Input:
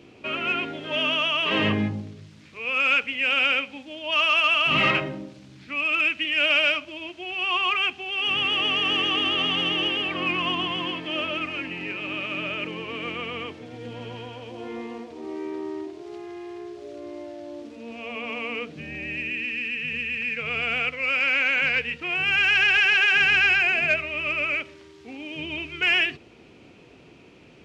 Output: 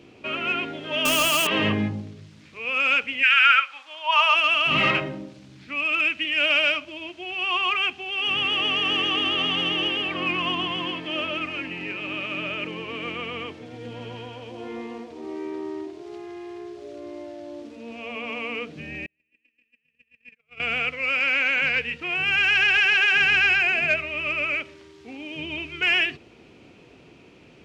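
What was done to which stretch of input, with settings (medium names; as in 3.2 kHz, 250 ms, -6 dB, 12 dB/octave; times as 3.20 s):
1.05–1.47 s: square wave that keeps the level
3.22–4.34 s: resonant high-pass 1.8 kHz -> 800 Hz, resonance Q 5.9
19.06–20.60 s: gate -25 dBFS, range -47 dB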